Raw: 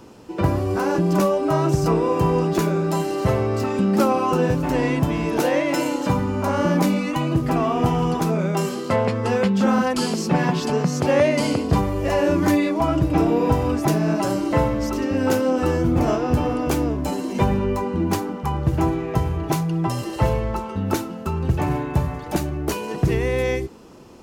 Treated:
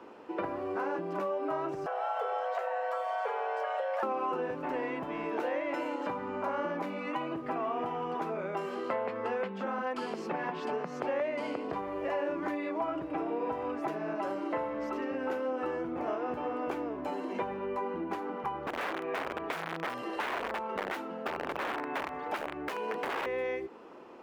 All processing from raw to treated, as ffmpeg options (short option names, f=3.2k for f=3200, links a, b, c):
-filter_complex "[0:a]asettb=1/sr,asplit=3[a][b][c];[a]atrim=end=1.864[d];[b]atrim=start=1.86:end=4.03,asetpts=PTS-STARTPTS,afade=t=in:d=0.004:c=qsin,afade=t=out:st=2.166:d=0.004:c=qsin,acrossover=split=860|2000[e][f][g];[e]acompressor=threshold=-28dB:ratio=4[h];[f]acompressor=threshold=-40dB:ratio=4[i];[g]acompressor=threshold=-42dB:ratio=4[j];[h][i][j]amix=inputs=3:normalize=0,afreqshift=340[k];[c]atrim=start=4.026[l];[d][k]acrossfade=d=0.004:c1=hsin:c2=qsin[m];[m][l]acrossfade=d=0.004:c1=qsin:c2=hsin,asettb=1/sr,asplit=3[n][o][p];[n]atrim=end=18.674[q];[o]atrim=start=18.67:end=23.26,asetpts=PTS-STARTPTS,afade=t=in:d=0.004:c=qsin,afade=t=out:st=4.586:d=0.004:c=qsin,aecho=1:1:4.3:0.31,atrim=end_sample=202419,aeval=exprs='(mod(7.94*val(0)+1,2)-1)/7.94':c=same[r];[p]atrim=start=23.256[s];[q][r]acrossfade=d=0.004:c1=hsin:c2=qsin[t];[t][s]acrossfade=d=0.004:c1=qsin:c2=hsin,lowshelf=f=400:g=-5.5,acompressor=threshold=-29dB:ratio=6,acrossover=split=260 2700:gain=0.0891 1 0.0794[u][v][w];[u][v][w]amix=inputs=3:normalize=0"